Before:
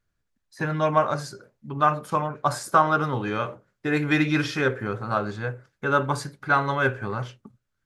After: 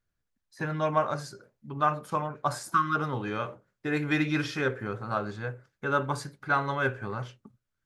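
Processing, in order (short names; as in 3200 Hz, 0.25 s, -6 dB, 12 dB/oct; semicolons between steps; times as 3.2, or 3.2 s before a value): spectral repair 2.69–2.93, 350–970 Hz before; gain -5 dB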